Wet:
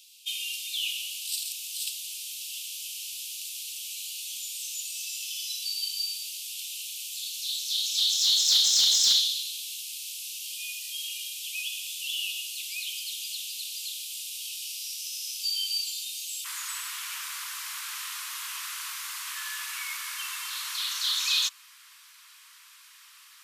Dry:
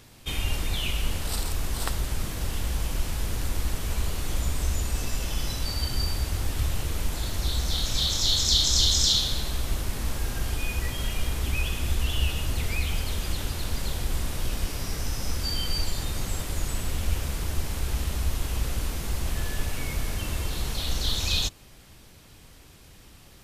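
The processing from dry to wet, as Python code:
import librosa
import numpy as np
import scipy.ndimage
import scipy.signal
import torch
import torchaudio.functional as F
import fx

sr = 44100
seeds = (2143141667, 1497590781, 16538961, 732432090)

y = fx.steep_highpass(x, sr, hz=fx.steps((0.0, 2600.0), (16.44, 1000.0)), slope=72)
y = 10.0 ** (-17.0 / 20.0) * np.tanh(y / 10.0 ** (-17.0 / 20.0))
y = y * 10.0 ** (3.0 / 20.0)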